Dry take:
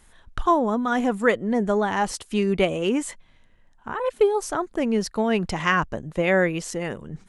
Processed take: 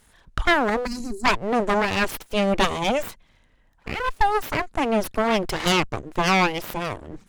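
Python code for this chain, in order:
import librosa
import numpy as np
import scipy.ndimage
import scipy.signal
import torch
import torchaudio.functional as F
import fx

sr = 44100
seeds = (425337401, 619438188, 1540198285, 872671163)

p1 = np.abs(x)
p2 = fx.cheby_harmonics(p1, sr, harmonics=(6,), levels_db=(-14,), full_scale_db=-6.0)
p3 = 10.0 ** (-16.0 / 20.0) * np.tanh(p2 / 10.0 ** (-16.0 / 20.0))
p4 = p2 + (p3 * librosa.db_to_amplitude(-5.5))
p5 = fx.spec_box(p4, sr, start_s=0.86, length_s=0.39, low_hz=410.0, high_hz=3900.0, gain_db=-24)
y = p5 * librosa.db_to_amplitude(-3.0)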